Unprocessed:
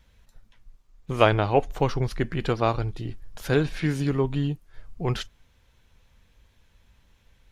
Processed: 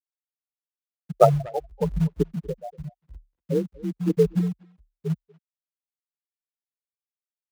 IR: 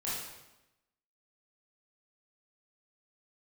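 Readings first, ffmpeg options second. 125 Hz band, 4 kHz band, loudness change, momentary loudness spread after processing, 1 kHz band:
-1.0 dB, -13.5 dB, +1.0 dB, 20 LU, -1.5 dB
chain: -filter_complex "[0:a]afftfilt=real='re*gte(hypot(re,im),0.501)':imag='im*gte(hypot(re,im),0.501)':win_size=1024:overlap=0.75,asplit=2[s0][s1];[s1]acrusher=bits=3:mode=log:mix=0:aa=0.000001,volume=0.473[s2];[s0][s2]amix=inputs=2:normalize=0,tremolo=f=0.93:d=0.82,afreqshift=35,asplit=2[s3][s4];[s4]adelay=240,highpass=300,lowpass=3400,asoftclip=type=hard:threshold=0.178,volume=0.0891[s5];[s3][s5]amix=inputs=2:normalize=0,volume=1.68"

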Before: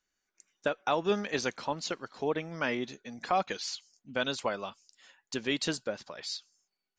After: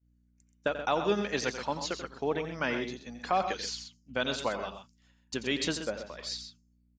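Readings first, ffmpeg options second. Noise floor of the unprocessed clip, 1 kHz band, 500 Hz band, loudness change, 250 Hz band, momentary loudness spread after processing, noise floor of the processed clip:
under -85 dBFS, +0.5 dB, +0.5 dB, +0.5 dB, +0.5 dB, 10 LU, -68 dBFS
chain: -af "aeval=exprs='val(0)+0.00282*(sin(2*PI*60*n/s)+sin(2*PI*2*60*n/s)/2+sin(2*PI*3*60*n/s)/3+sin(2*PI*4*60*n/s)/4+sin(2*PI*5*60*n/s)/5)':c=same,agate=range=0.0224:threshold=0.00794:ratio=3:detection=peak,aecho=1:1:87.46|128.3:0.282|0.316"

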